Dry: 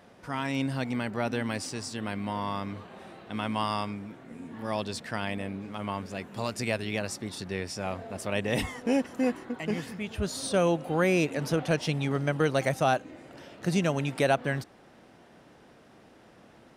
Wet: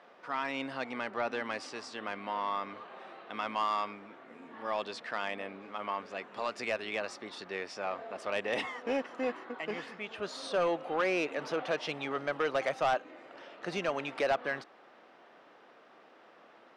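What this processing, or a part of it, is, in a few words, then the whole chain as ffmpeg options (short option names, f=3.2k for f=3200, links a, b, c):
intercom: -af "highpass=450,lowpass=3.6k,equalizer=f=1.2k:t=o:w=0.26:g=5,asoftclip=type=tanh:threshold=-22dB"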